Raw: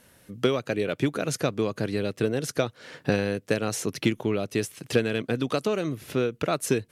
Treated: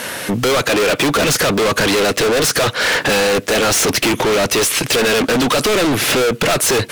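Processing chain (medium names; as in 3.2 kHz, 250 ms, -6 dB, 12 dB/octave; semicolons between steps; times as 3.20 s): overdrive pedal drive 34 dB, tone 5 kHz, clips at -7.5 dBFS; hard clipper -22 dBFS, distortion -9 dB; trim +8.5 dB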